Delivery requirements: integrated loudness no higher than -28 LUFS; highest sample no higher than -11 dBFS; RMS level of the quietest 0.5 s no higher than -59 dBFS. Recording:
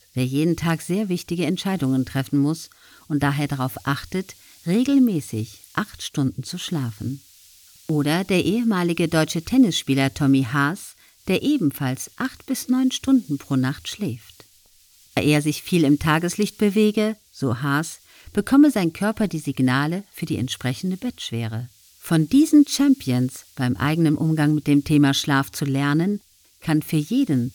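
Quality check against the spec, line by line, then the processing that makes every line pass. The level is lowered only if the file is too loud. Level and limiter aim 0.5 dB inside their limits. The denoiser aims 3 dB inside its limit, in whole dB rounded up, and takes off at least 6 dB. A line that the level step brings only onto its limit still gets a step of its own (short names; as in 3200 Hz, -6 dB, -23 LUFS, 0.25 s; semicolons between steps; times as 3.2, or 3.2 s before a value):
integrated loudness -21.5 LUFS: fail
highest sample -6.0 dBFS: fail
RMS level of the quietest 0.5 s -55 dBFS: fail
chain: gain -7 dB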